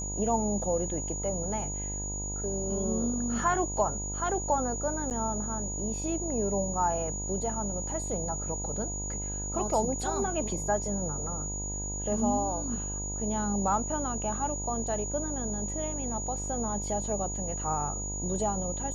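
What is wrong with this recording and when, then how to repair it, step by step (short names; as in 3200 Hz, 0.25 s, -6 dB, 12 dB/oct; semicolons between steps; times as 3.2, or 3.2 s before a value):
buzz 50 Hz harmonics 20 -37 dBFS
tone 6800 Hz -35 dBFS
5.1–5.11 gap 8.6 ms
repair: de-hum 50 Hz, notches 20; notch 6800 Hz, Q 30; interpolate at 5.1, 8.6 ms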